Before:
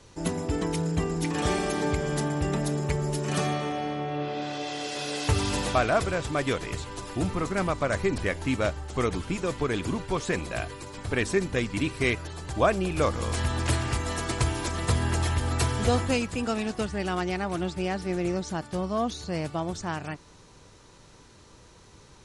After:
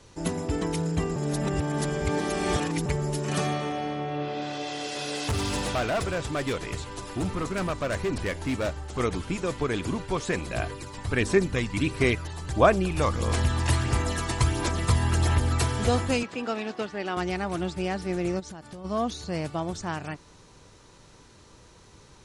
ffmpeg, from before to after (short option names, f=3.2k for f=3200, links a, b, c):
-filter_complex "[0:a]asettb=1/sr,asplit=3[a][b][c];[a]atrim=end=5.114[d];[b]atrim=start=5.11:end=9,asetpts=PTS-STARTPTS,afade=t=in:d=0.004:c=qsin,afade=t=out:st=3.886:d=0.004:c=qsin,volume=23dB,asoftclip=hard,volume=-23dB[e];[c]atrim=start=8.996[f];[d][e]acrossfade=d=0.004:c1=hsin:c2=qsin[g];[g][f]acrossfade=d=0.004:c1=qsin:c2=hsin,asplit=3[h][i][j];[h]afade=t=out:st=10.46:d=0.02[k];[i]aphaser=in_gain=1:out_gain=1:delay=1.1:decay=0.36:speed=1.5:type=sinusoidal,afade=t=in:st=10.46:d=0.02,afade=t=out:st=15.59:d=0.02[l];[j]afade=t=in:st=15.59:d=0.02[m];[k][l][m]amix=inputs=3:normalize=0,asettb=1/sr,asplit=3[n][o][p];[n]atrim=end=16.234[q];[o]atrim=start=16.23:end=17.17,asetpts=PTS-STARTPTS,afade=t=in:d=0.004:c=qsin,afade=t=out:st=0.936:d=0.004:c=qsin,highpass=260,lowpass=4.5k[r];[p]atrim=start=17.166[s];[q][r]acrossfade=d=0.004:c1=hsin:c2=qsin[t];[t][s]acrossfade=d=0.004:c1=qsin:c2=hsin,asplit=3[u][v][w];[u]afade=t=out:st=18.39:d=0.02[x];[v]acompressor=threshold=-37dB:ratio=8:attack=3.2:release=140:knee=1:detection=peak,afade=t=in:st=18.39:d=0.02,afade=t=out:st=18.84:d=0.02[y];[w]afade=t=in:st=18.84:d=0.02[z];[x][y][z]amix=inputs=3:normalize=0,asplit=3[aa][ab][ac];[aa]atrim=end=1.162[ad];[ab]atrim=start=1.158:end=2.862,asetpts=PTS-STARTPTS,areverse[ae];[ac]atrim=start=2.858[af];[ad][ae]acrossfade=d=0.004:c1=hsin:c2=hsin[ag];[ag][af]acrossfade=d=0.004:c1=hsin:c2=hsin"